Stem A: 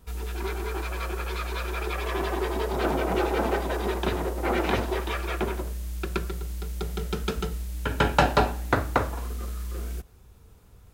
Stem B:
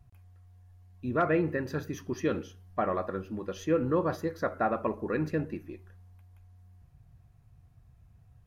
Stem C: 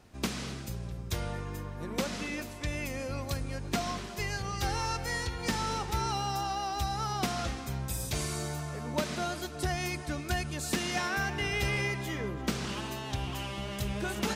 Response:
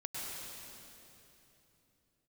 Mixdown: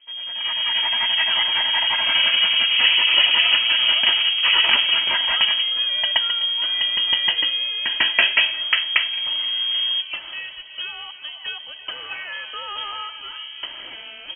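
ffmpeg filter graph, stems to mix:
-filter_complex "[0:a]dynaudnorm=f=150:g=7:m=10dB,volume=-1.5dB[a];[1:a]volume=-1dB[b];[2:a]adelay=1150,volume=0dB[c];[a][b][c]amix=inputs=3:normalize=0,aecho=1:1:3:0.33,lowpass=f=2.8k:t=q:w=0.5098,lowpass=f=2.8k:t=q:w=0.6013,lowpass=f=2.8k:t=q:w=0.9,lowpass=f=2.8k:t=q:w=2.563,afreqshift=-3300"

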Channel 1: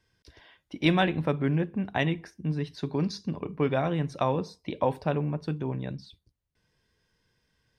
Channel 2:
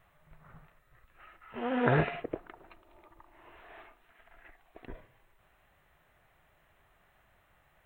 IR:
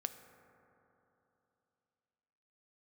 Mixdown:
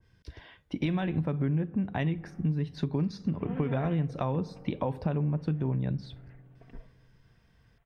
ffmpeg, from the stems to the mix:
-filter_complex "[0:a]alimiter=limit=-18dB:level=0:latency=1:release=166,adynamicequalizer=threshold=0.00562:dfrequency=1700:dqfactor=0.7:tfrequency=1700:tqfactor=0.7:attack=5:release=100:ratio=0.375:range=2:mode=cutabove:tftype=highshelf,volume=2dB,asplit=2[a][b];[b]volume=-13.5dB[c];[1:a]aecho=1:1:4.4:0.65,acontrast=30,adelay=1850,volume=-17.5dB,asplit=2[d][e];[e]volume=-7.5dB[f];[2:a]atrim=start_sample=2205[g];[c][f]amix=inputs=2:normalize=0[h];[h][g]afir=irnorm=-1:irlink=0[i];[a][d][i]amix=inputs=3:normalize=0,bass=f=250:g=8,treble=f=4k:g=-6,acompressor=threshold=-27dB:ratio=4"

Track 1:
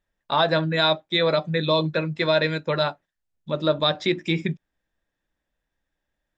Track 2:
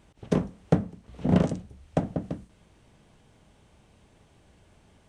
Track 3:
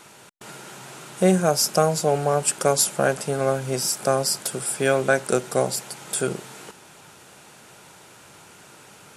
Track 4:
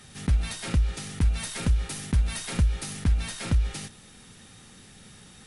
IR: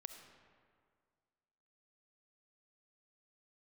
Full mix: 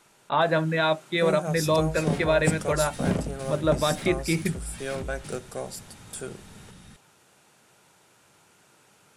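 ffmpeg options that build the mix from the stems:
-filter_complex "[0:a]lowpass=f=3k:w=0.5412,lowpass=f=3k:w=1.3066,volume=-1.5dB[a];[1:a]adelay=1750,volume=-4dB[b];[2:a]acontrast=80,volume=-18.5dB[c];[3:a]bass=f=250:g=7,treble=f=4k:g=-3,acompressor=threshold=-25dB:ratio=6,asoftclip=type=tanh:threshold=-31.5dB,adelay=1500,volume=-2dB[d];[a][b][c][d]amix=inputs=4:normalize=0"

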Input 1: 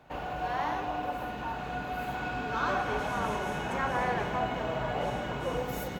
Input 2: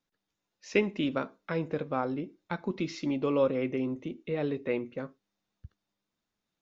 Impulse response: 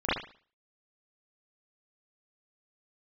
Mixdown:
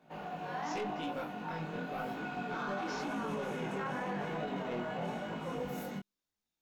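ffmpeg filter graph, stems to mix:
-filter_complex "[0:a]lowshelf=f=120:t=q:w=3:g=-13.5,flanger=delay=18.5:depth=2.1:speed=0.58,volume=-1dB[a];[1:a]flanger=delay=15:depth=5.7:speed=0.39,highshelf=f=4.5k:g=9.5,asoftclip=type=tanh:threshold=-27.5dB,volume=-2.5dB[b];[a][b]amix=inputs=2:normalize=0,flanger=delay=18:depth=7.4:speed=0.92,alimiter=level_in=5dB:limit=-24dB:level=0:latency=1:release=16,volume=-5dB"

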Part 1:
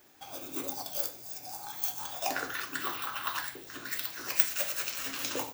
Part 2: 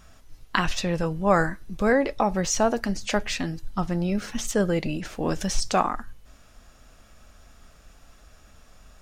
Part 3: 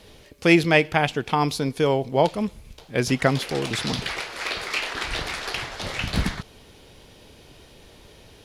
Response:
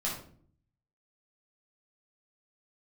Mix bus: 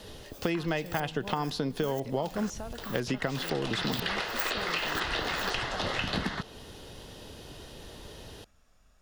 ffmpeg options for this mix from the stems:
-filter_complex "[0:a]aeval=exprs='val(0)*pow(10,-34*if(lt(mod(-2*n/s,1),2*abs(-2)/1000),1-mod(-2*n/s,1)/(2*abs(-2)/1000),(mod(-2*n/s,1)-2*abs(-2)/1000)/(1-2*abs(-2)/1000))/20)':c=same,volume=-0.5dB[a];[1:a]acompressor=threshold=-24dB:ratio=6,volume=-13dB[b];[2:a]bandreject=f=2.3k:w=5.7,acrossover=split=170|4800[c][d][e];[c]acompressor=threshold=-40dB:ratio=4[f];[d]acompressor=threshold=-27dB:ratio=4[g];[e]acompressor=threshold=-55dB:ratio=4[h];[f][g][h]amix=inputs=3:normalize=0,volume=3dB[i];[a][b][i]amix=inputs=3:normalize=0,acompressor=threshold=-28dB:ratio=2.5"

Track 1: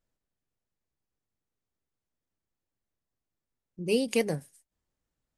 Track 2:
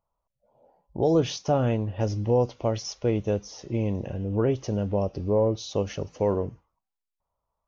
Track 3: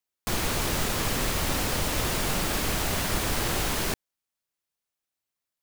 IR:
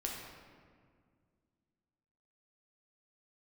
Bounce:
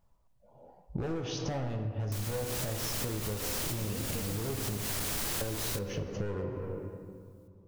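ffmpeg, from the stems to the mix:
-filter_complex "[0:a]volume=2dB[a];[1:a]volume=23.5dB,asoftclip=hard,volume=-23.5dB,volume=0dB,asplit=3[b][c][d];[b]atrim=end=4.78,asetpts=PTS-STARTPTS,afade=t=out:st=4.776:d=0.004:c=hsin[e];[c]atrim=start=4.78:end=5.41,asetpts=PTS-STARTPTS,volume=0[f];[d]atrim=start=5.41,asetpts=PTS-STARTPTS,afade=t=in:d=0.004:c=hsin[g];[e][f][g]concat=n=3:v=0:a=1,asplit=3[h][i][j];[i]volume=-3dB[k];[2:a]highshelf=f=4.2k:g=9.5,asoftclip=type=tanh:threshold=-22.5dB,adelay=1850,volume=0dB,asplit=2[l][m];[m]volume=-12.5dB[n];[j]apad=whole_len=329701[o];[l][o]sidechaincompress=threshold=-32dB:ratio=8:attack=16:release=194[p];[a][h]amix=inputs=2:normalize=0,bass=f=250:g=11,treble=f=4k:g=0,acompressor=threshold=-27dB:ratio=6,volume=0dB[q];[3:a]atrim=start_sample=2205[r];[k][n]amix=inputs=2:normalize=0[s];[s][r]afir=irnorm=-1:irlink=0[t];[p][q][t]amix=inputs=3:normalize=0,acompressor=threshold=-31dB:ratio=12"

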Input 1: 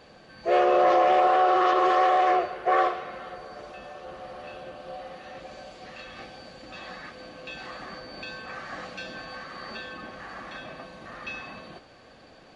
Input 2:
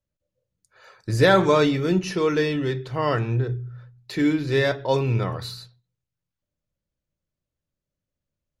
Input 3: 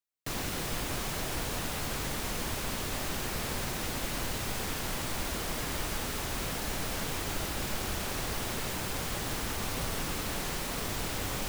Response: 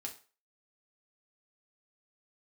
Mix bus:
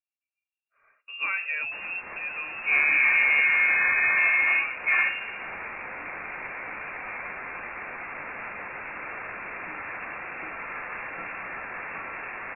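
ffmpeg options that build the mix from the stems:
-filter_complex "[0:a]adelay=2200,volume=-1.5dB[a];[1:a]lowpass=4k,volume=-13dB,asplit=2[b][c];[2:a]highpass=700,adelay=1450,volume=2dB,asplit=2[d][e];[e]volume=-7.5dB[f];[c]apad=whole_len=570443[g];[d][g]sidechaincompress=threshold=-43dB:ratio=8:attack=48:release=160[h];[3:a]atrim=start_sample=2205[i];[f][i]afir=irnorm=-1:irlink=0[j];[a][b][h][j]amix=inputs=4:normalize=0,highpass=120,lowpass=f=2.5k:t=q:w=0.5098,lowpass=f=2.5k:t=q:w=0.6013,lowpass=f=2.5k:t=q:w=0.9,lowpass=f=2.5k:t=q:w=2.563,afreqshift=-2900"

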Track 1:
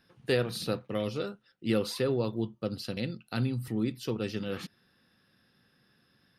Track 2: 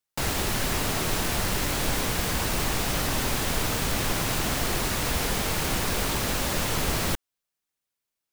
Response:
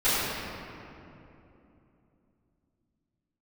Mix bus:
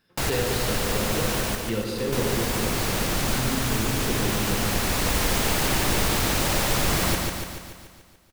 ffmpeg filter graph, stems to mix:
-filter_complex "[0:a]volume=-3dB,asplit=3[a][b][c];[b]volume=-14dB[d];[1:a]volume=1.5dB,asplit=3[e][f][g];[e]atrim=end=1.41,asetpts=PTS-STARTPTS,afade=t=out:st=1.406:d=0.004:c=hsin[h];[f]atrim=start=1.41:end=1.98,asetpts=PTS-STARTPTS,volume=0[i];[g]atrim=start=1.98,asetpts=PTS-STARTPTS,afade=t=in:d=0.004:c=hsin[j];[h][i][j]concat=n=3:v=0:a=1,asplit=2[k][l];[l]volume=-3.5dB[m];[c]apad=whole_len=367228[n];[k][n]sidechaincompress=threshold=-38dB:ratio=8:attack=42:release=1230[o];[2:a]atrim=start_sample=2205[p];[d][p]afir=irnorm=-1:irlink=0[q];[m]aecho=0:1:144|288|432|576|720|864|1008|1152|1296:1|0.59|0.348|0.205|0.121|0.0715|0.0422|0.0249|0.0147[r];[a][o][q][r]amix=inputs=4:normalize=0"

